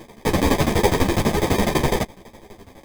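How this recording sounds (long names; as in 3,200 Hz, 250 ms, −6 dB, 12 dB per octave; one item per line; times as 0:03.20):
aliases and images of a low sample rate 1,400 Hz, jitter 0%
tremolo saw down 12 Hz, depth 100%
a shimmering, thickened sound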